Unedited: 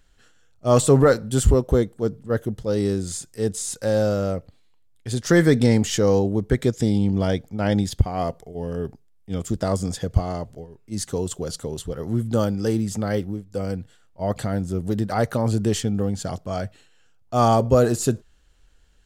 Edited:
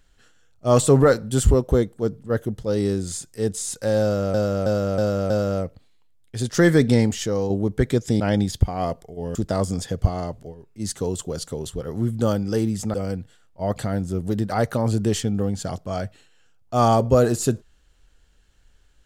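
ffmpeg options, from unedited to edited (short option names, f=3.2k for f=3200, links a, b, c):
-filter_complex "[0:a]asplit=9[a][b][c][d][e][f][g][h][i];[a]atrim=end=4.342[j];[b]atrim=start=4.018:end=4.342[k];[c]atrim=start=4.018:end=4.342[l];[d]atrim=start=4.018:end=4.342[m];[e]atrim=start=4.018:end=6.22,asetpts=PTS-STARTPTS,afade=t=out:st=1.662:d=0.54:c=qua:silence=0.501187[n];[f]atrim=start=6.22:end=6.922,asetpts=PTS-STARTPTS,afade=t=in:d=0.004:c=hsin:silence=0.501187[o];[g]atrim=start=7.578:end=8.732[p];[h]atrim=start=9.468:end=13.062[q];[i]atrim=start=13.538[r];[j][k]acrossfade=d=0.004:c1=hsin:c2=hsin[s];[s][l]acrossfade=d=0.004:c1=hsin:c2=hsin[t];[t][m]acrossfade=d=0.004:c1=hsin:c2=hsin[u];[n][o]concat=n=2:v=0:a=1[v];[u][v]acrossfade=d=0.004:c1=hsin:c2=hsin[w];[w][p]acrossfade=d=0.004:c1=hsin:c2=hsin[x];[x][q]acrossfade=d=0.004:c1=hsin:c2=hsin[y];[y][r]acrossfade=d=0.004:c1=hsin:c2=hsin"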